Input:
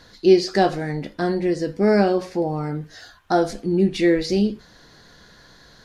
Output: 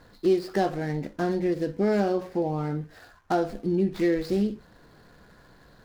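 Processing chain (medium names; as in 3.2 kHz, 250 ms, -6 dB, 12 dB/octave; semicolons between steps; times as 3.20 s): median filter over 15 samples; compression 2:1, threshold -21 dBFS, peak gain reduction 7 dB; trim -2 dB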